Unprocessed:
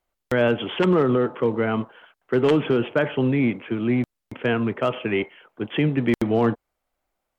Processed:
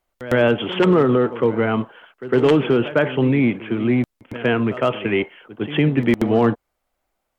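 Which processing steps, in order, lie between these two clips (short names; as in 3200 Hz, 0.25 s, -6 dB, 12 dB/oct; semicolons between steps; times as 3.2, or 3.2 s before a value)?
pre-echo 0.107 s -15 dB; gain +3.5 dB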